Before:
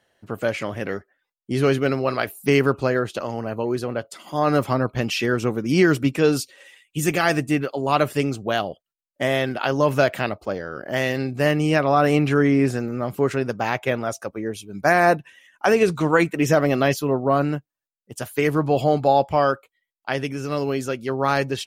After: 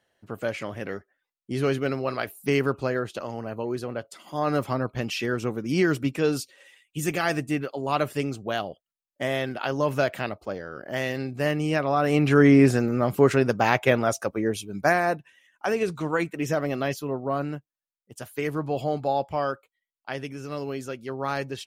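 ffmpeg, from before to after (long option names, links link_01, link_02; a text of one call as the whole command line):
ffmpeg -i in.wav -af "volume=2.5dB,afade=type=in:start_time=12.06:duration=0.43:silence=0.398107,afade=type=out:start_time=14.6:duration=0.43:silence=0.298538" out.wav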